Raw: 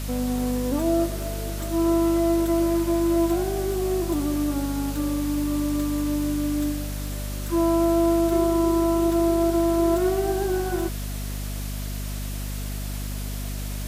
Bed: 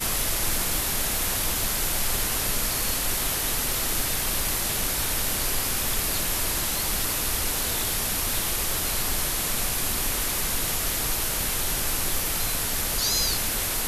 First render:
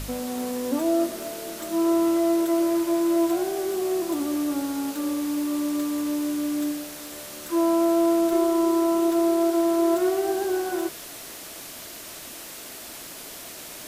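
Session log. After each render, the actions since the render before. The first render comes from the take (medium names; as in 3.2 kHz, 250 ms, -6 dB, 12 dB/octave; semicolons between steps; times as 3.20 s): de-hum 50 Hz, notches 9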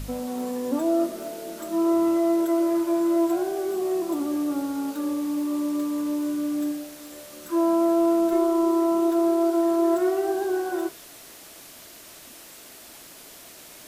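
noise print and reduce 6 dB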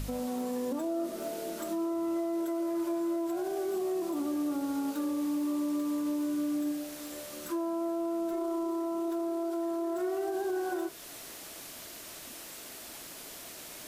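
compression 1.5:1, threshold -36 dBFS, peak gain reduction 7 dB; peak limiter -25.5 dBFS, peak gain reduction 7 dB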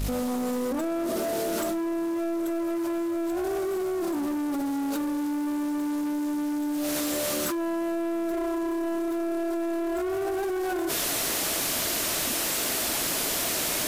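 waveshaping leveller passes 2; level flattener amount 100%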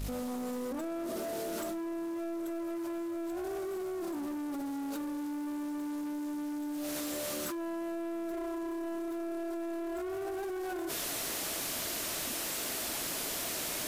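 trim -8.5 dB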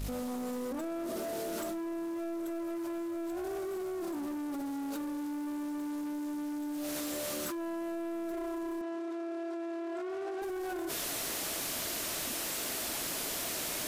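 8.81–10.42 s: band-pass 250–5600 Hz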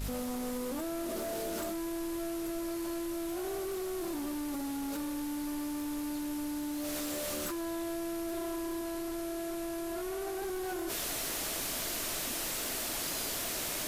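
add bed -21 dB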